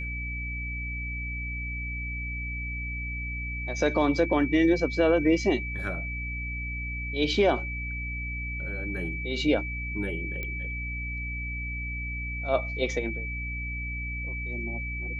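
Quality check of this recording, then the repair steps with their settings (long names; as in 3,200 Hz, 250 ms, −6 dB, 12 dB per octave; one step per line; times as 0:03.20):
mains hum 60 Hz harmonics 5 −35 dBFS
whistle 2,300 Hz −34 dBFS
0:10.43: click −21 dBFS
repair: click removal
hum removal 60 Hz, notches 5
notch filter 2,300 Hz, Q 30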